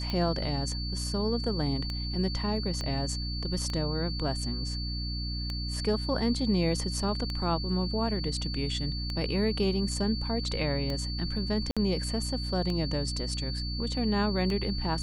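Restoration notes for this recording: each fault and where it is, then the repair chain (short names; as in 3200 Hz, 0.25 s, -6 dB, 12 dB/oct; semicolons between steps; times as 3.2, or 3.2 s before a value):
hum 60 Hz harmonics 5 -34 dBFS
tick 33 1/3 rpm -20 dBFS
tone 4500 Hz -37 dBFS
2.81 pop -21 dBFS
11.71–11.77 gap 56 ms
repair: de-click; notch 4500 Hz, Q 30; de-hum 60 Hz, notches 5; interpolate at 11.71, 56 ms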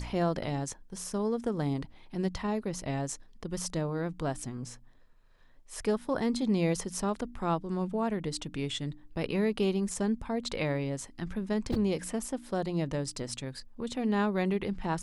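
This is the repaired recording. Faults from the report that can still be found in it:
2.81 pop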